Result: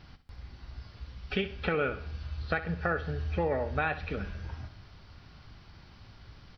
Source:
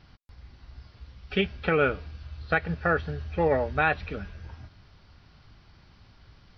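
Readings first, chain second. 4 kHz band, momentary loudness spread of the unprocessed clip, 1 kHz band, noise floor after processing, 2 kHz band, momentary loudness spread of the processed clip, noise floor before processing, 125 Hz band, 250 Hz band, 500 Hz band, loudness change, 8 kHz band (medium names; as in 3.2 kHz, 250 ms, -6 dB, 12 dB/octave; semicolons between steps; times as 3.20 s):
-4.0 dB, 18 LU, -6.0 dB, -54 dBFS, -6.0 dB, 19 LU, -57 dBFS, -2.0 dB, -4.5 dB, -5.5 dB, -5.5 dB, no reading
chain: compression 2.5:1, threshold -33 dBFS, peak gain reduction 10 dB; feedback delay 64 ms, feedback 42%, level -13 dB; trim +2.5 dB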